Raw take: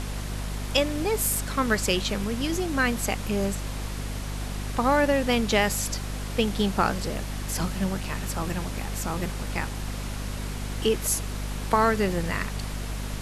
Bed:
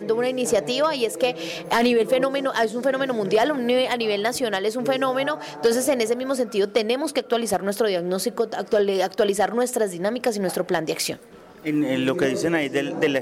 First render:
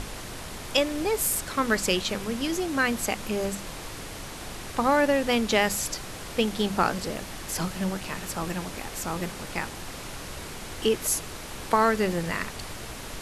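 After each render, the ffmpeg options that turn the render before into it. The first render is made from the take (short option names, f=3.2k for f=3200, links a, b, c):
-af "bandreject=f=50:t=h:w=6,bandreject=f=100:t=h:w=6,bandreject=f=150:t=h:w=6,bandreject=f=200:t=h:w=6,bandreject=f=250:t=h:w=6"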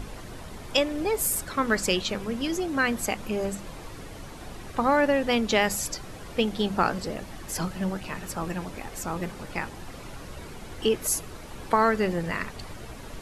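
-af "afftdn=nr=9:nf=-39"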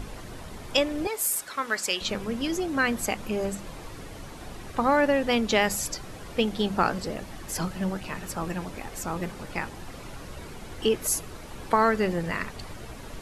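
-filter_complex "[0:a]asettb=1/sr,asplit=3[a][b][c];[a]atrim=end=1.074[d];[b]atrim=start=1.07:end=2.01,asetpts=PTS-STARTPTS,afade=t=in:d=0.004:c=qsin,afade=t=out:st=0.936:d=0.004:c=qsin,highpass=f=1k:p=1[e];[c]atrim=start=2.006[f];[d][e]acrossfade=d=0.004:c1=hsin:c2=qsin[g];[g][f]acrossfade=d=0.004:c1=qsin:c2=hsin"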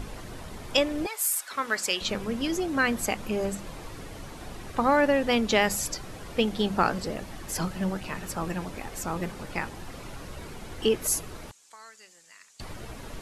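-filter_complex "[0:a]asettb=1/sr,asplit=3[a][b][c];[a]atrim=end=1.064[d];[b]atrim=start=1.06:end=1.51,asetpts=PTS-STARTPTS,afade=t=in:d=0.004:c=qsin,afade=t=out:st=0.446:d=0.004:c=qsin,highpass=900[e];[c]atrim=start=1.506[f];[d][e]acrossfade=d=0.004:c1=hsin:c2=qsin[g];[g][f]acrossfade=d=0.004:c1=qsin:c2=hsin,asettb=1/sr,asplit=3[h][i][j];[h]atrim=end=9.714[k];[i]atrim=start=9.71:end=10.7,asetpts=PTS-STARTPTS,afade=t=in:d=0.004:c=qsin,afade=t=out:st=0.986:d=0.004:c=qsin,asoftclip=type=hard:threshold=-31dB[l];[j]atrim=start=10.696[m];[k][l]acrossfade=d=0.004:c1=hsin:c2=qsin[n];[n][m]acrossfade=d=0.004:c1=qsin:c2=hsin,asettb=1/sr,asplit=3[o][p][q];[o]atrim=end=11.514[r];[p]atrim=start=11.51:end=12.6,asetpts=PTS-STARTPTS,afade=t=in:d=0.004:c=qsin,afade=t=out:st=1.086:d=0.004:c=qsin,bandpass=f=7.1k:t=q:w=3.1[s];[q]atrim=start=12.596[t];[r][s]acrossfade=d=0.004:c1=hsin:c2=qsin[u];[u][t]acrossfade=d=0.004:c1=qsin:c2=hsin"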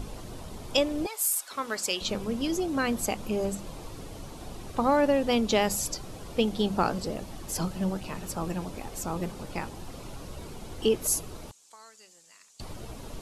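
-af "equalizer=f=1.8k:t=o:w=0.98:g=-8.5"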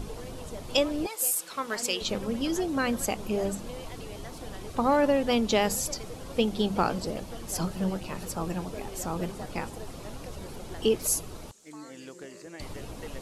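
-filter_complex "[1:a]volume=-23dB[a];[0:a][a]amix=inputs=2:normalize=0"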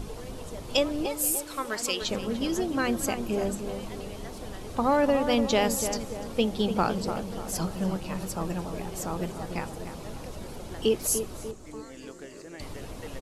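-filter_complex "[0:a]asplit=2[a][b];[b]adelay=295,lowpass=f=1.6k:p=1,volume=-8dB,asplit=2[c][d];[d]adelay=295,lowpass=f=1.6k:p=1,volume=0.51,asplit=2[e][f];[f]adelay=295,lowpass=f=1.6k:p=1,volume=0.51,asplit=2[g][h];[h]adelay=295,lowpass=f=1.6k:p=1,volume=0.51,asplit=2[i][j];[j]adelay=295,lowpass=f=1.6k:p=1,volume=0.51,asplit=2[k][l];[l]adelay=295,lowpass=f=1.6k:p=1,volume=0.51[m];[a][c][e][g][i][k][m]amix=inputs=7:normalize=0"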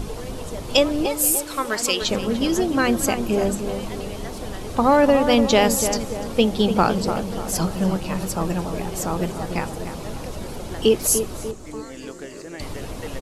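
-af "volume=7.5dB"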